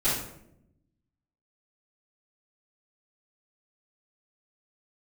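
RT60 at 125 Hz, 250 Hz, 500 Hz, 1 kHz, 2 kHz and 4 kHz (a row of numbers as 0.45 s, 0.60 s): 1.4 s, 1.2 s, 0.90 s, 0.65 s, 0.60 s, 0.45 s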